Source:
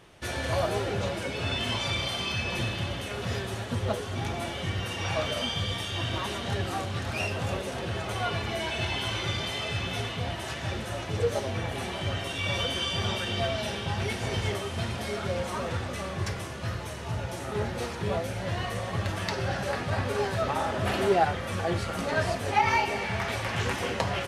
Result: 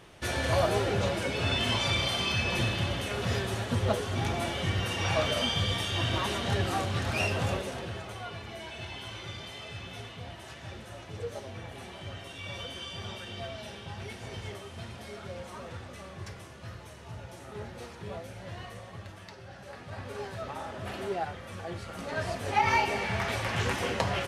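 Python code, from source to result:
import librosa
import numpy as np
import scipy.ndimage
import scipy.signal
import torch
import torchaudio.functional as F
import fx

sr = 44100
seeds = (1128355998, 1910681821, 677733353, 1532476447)

y = fx.gain(x, sr, db=fx.line((7.43, 1.5), (8.24, -10.5), (18.62, -10.5), (19.45, -18.0), (20.15, -10.0), (21.79, -10.0), (22.74, -0.5)))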